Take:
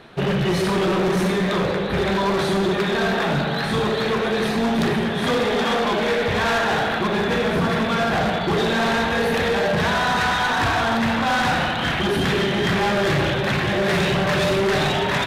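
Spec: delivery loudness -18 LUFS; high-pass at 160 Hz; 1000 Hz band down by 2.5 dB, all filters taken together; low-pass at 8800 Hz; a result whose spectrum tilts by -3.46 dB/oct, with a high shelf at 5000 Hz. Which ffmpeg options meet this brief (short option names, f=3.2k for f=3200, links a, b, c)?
-af "highpass=160,lowpass=8.8k,equalizer=f=1k:t=o:g=-3,highshelf=f=5k:g=-7,volume=4dB"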